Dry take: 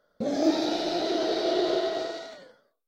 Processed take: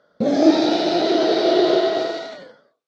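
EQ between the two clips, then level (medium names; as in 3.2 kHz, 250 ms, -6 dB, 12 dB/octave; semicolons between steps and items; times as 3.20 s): band-pass 130–5300 Hz; bass shelf 170 Hz +6 dB; +8.5 dB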